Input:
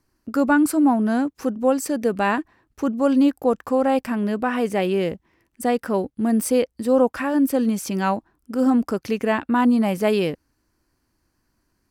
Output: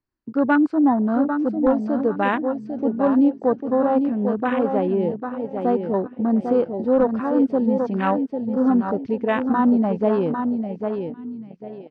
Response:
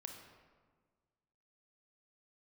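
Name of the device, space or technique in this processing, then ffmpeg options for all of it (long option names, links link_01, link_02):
synthesiser wavefolder: -af "aecho=1:1:798|1596|2394|3192:0.501|0.175|0.0614|0.0215,aeval=exprs='0.355*(abs(mod(val(0)/0.355+3,4)-2)-1)':channel_layout=same,lowpass=frequency=4400:width=0.5412,lowpass=frequency=4400:width=1.3066,afwtdn=0.0562"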